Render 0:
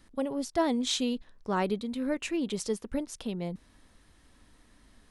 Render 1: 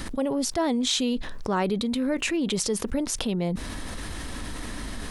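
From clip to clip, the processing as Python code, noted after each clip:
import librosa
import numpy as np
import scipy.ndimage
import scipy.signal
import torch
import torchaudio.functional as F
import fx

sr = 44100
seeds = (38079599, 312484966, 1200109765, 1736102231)

y = fx.env_flatten(x, sr, amount_pct=70)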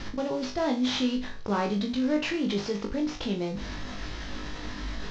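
y = fx.cvsd(x, sr, bps=32000)
y = fx.room_flutter(y, sr, wall_m=3.4, rt60_s=0.31)
y = y * librosa.db_to_amplitude(-3.5)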